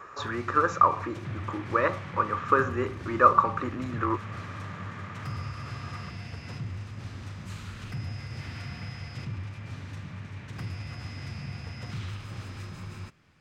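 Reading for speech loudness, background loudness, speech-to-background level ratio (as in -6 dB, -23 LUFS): -26.5 LUFS, -39.0 LUFS, 12.5 dB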